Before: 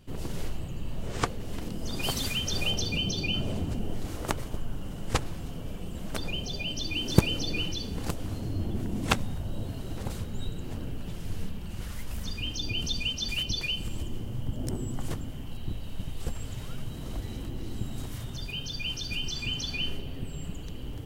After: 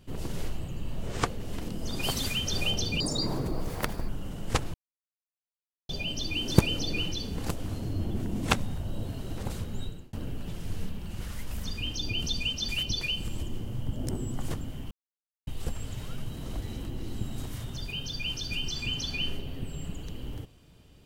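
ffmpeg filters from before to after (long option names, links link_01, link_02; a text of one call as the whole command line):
ffmpeg -i in.wav -filter_complex "[0:a]asplit=8[link_01][link_02][link_03][link_04][link_05][link_06][link_07][link_08];[link_01]atrim=end=3.004[link_09];[link_02]atrim=start=3:end=4.69,asetpts=PTS-STARTPTS,asetrate=68355,aresample=44100,atrim=end_sample=48083,asetpts=PTS-STARTPTS[link_10];[link_03]atrim=start=4.686:end=5.34,asetpts=PTS-STARTPTS,afade=type=out:start_time=0.65:duration=0.004:curve=hsin[link_11];[link_04]atrim=start=5.34:end=6.49,asetpts=PTS-STARTPTS,volume=0[link_12];[link_05]atrim=start=6.49:end=10.73,asetpts=PTS-STARTPTS,afade=type=in:duration=0.004:curve=hsin,afade=type=out:start_time=3.89:duration=0.35[link_13];[link_06]atrim=start=10.73:end=15.51,asetpts=PTS-STARTPTS,afade=type=in:duration=0.004:curve=hsin,afade=type=out:start_time=4.776:duration=0.004:curve=hsin[link_14];[link_07]atrim=start=15.51:end=16.07,asetpts=PTS-STARTPTS,volume=0[link_15];[link_08]atrim=start=16.07,asetpts=PTS-STARTPTS,afade=type=in:duration=0.004:curve=hsin[link_16];[link_09][link_10]acrossfade=duration=0.004:curve1=hsin:curve2=hsin[link_17];[link_11][link_12][link_13][link_14][link_15][link_16]concat=n=6:v=0:a=1[link_18];[link_17][link_18]acrossfade=duration=0.004:curve1=hsin:curve2=hsin" out.wav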